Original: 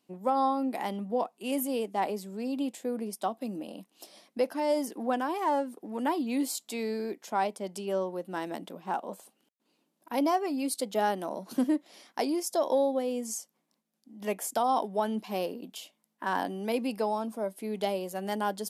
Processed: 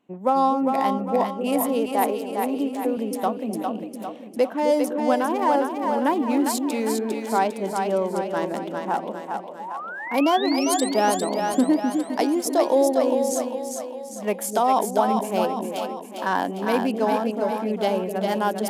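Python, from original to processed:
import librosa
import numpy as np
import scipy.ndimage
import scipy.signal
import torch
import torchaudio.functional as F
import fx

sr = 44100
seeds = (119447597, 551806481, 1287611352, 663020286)

y = fx.wiener(x, sr, points=9)
y = fx.steep_highpass(y, sr, hz=240.0, slope=36, at=(1.86, 2.97))
y = fx.spec_paint(y, sr, seeds[0], shape='rise', start_s=9.59, length_s=1.3, low_hz=800.0, high_hz=8900.0, level_db=-41.0)
y = fx.echo_split(y, sr, split_hz=490.0, low_ms=258, high_ms=402, feedback_pct=52, wet_db=-4.5)
y = y * librosa.db_to_amplitude(7.0)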